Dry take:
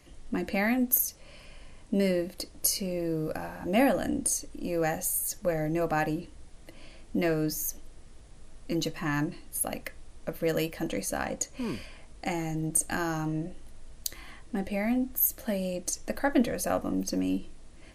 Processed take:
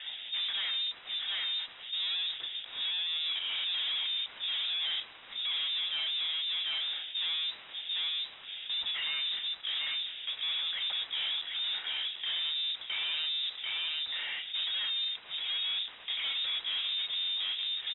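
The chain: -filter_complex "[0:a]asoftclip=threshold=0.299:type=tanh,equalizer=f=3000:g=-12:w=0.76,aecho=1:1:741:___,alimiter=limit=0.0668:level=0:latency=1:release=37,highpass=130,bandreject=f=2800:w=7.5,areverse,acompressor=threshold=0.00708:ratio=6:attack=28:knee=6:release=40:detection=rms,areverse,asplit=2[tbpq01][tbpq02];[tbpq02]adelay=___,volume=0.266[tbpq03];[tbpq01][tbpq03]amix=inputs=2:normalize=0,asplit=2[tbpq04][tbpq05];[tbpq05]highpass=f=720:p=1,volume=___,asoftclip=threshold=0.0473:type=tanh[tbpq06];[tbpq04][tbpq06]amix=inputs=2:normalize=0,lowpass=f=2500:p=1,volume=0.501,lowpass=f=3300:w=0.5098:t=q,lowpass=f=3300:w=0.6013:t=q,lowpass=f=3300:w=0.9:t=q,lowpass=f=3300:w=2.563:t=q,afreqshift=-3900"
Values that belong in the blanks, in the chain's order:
0.211, 31, 50.1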